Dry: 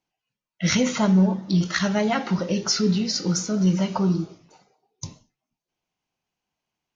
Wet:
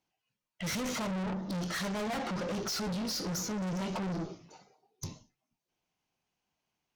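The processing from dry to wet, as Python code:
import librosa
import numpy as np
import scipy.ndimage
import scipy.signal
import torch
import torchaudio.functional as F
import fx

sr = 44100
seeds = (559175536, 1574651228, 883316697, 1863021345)

y = fx.dynamic_eq(x, sr, hz=620.0, q=0.7, threshold_db=-37.0, ratio=4.0, max_db=4)
y = fx.tube_stage(y, sr, drive_db=33.0, bias=0.3)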